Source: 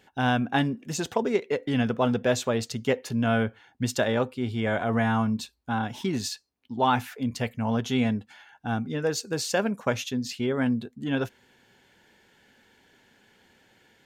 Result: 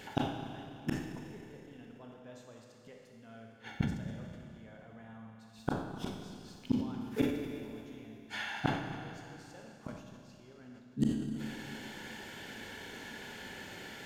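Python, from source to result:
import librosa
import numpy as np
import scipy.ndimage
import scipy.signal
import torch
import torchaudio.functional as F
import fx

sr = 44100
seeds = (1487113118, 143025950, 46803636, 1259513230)

p1 = x + fx.room_flutter(x, sr, wall_m=10.6, rt60_s=0.31, dry=0)
p2 = fx.gate_flip(p1, sr, shuts_db=-28.0, range_db=-42)
p3 = fx.rev_schroeder(p2, sr, rt60_s=2.8, comb_ms=28, drr_db=0.5)
p4 = fx.sustainer(p3, sr, db_per_s=77.0)
y = p4 * librosa.db_to_amplitude(11.0)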